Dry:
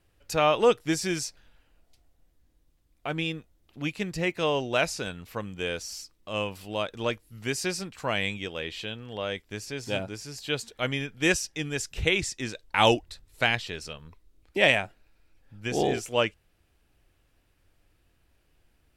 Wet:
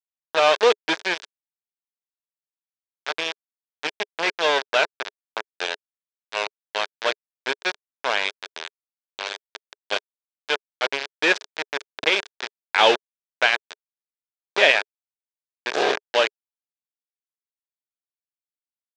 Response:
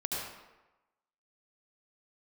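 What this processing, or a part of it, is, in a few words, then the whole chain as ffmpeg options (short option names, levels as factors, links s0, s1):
hand-held game console: -af "acrusher=bits=3:mix=0:aa=0.000001,highpass=410,equalizer=f=420:t=q:w=4:g=7,equalizer=f=620:t=q:w=4:g=4,equalizer=f=930:t=q:w=4:g=4,equalizer=f=1600:t=q:w=4:g=7,equalizer=f=2400:t=q:w=4:g=3,equalizer=f=3600:t=q:w=4:g=6,lowpass=f=5700:w=0.5412,lowpass=f=5700:w=1.3066,volume=1.12"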